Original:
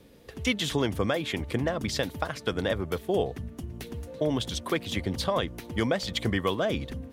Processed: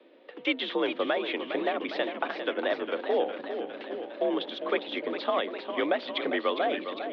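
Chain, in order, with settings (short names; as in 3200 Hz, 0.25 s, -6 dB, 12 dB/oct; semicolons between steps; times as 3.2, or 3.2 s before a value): mistuned SSB +55 Hz 230–3500 Hz; warbling echo 0.405 s, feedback 67%, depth 100 cents, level -9 dB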